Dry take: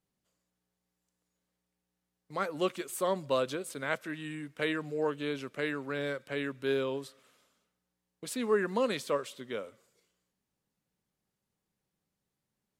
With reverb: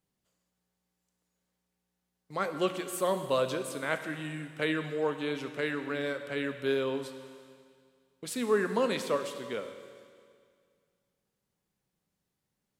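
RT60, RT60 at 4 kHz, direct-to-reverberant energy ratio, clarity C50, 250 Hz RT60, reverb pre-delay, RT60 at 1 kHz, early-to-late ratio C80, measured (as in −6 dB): 2.1 s, 2.1 s, 8.0 dB, 9.0 dB, 2.1 s, 23 ms, 2.1 s, 10.0 dB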